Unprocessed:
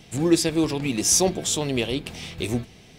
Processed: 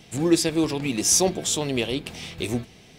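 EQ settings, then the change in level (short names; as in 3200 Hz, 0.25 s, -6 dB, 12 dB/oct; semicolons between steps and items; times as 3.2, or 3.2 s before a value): low shelf 110 Hz -4.5 dB; 0.0 dB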